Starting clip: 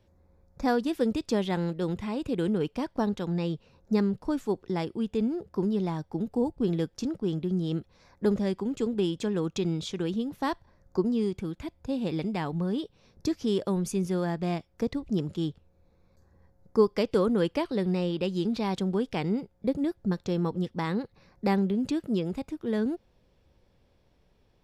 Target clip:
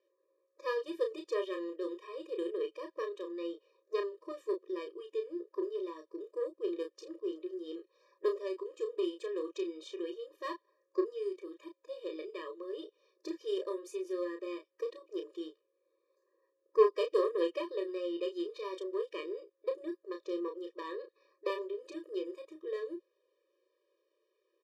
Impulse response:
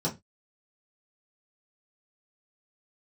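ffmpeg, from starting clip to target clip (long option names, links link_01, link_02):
-filter_complex "[0:a]bandreject=frequency=1500:width=7,asplit=2[link_01][link_02];[link_02]acrusher=bits=2:mix=0:aa=0.5,volume=-6dB[link_03];[link_01][link_03]amix=inputs=2:normalize=0,aemphasis=mode=reproduction:type=cd,asplit=2[link_04][link_05];[link_05]adelay=32,volume=-6dB[link_06];[link_04][link_06]amix=inputs=2:normalize=0,afftfilt=real='re*eq(mod(floor(b*sr/1024/320),2),1)':imag='im*eq(mod(floor(b*sr/1024/320),2),1)':win_size=1024:overlap=0.75,volume=-6dB"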